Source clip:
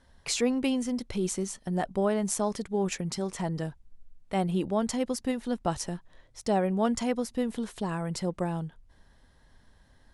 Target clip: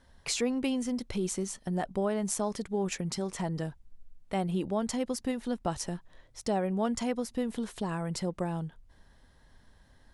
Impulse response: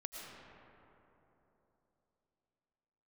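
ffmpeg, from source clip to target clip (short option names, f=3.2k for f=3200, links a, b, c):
-af "acompressor=threshold=-31dB:ratio=1.5"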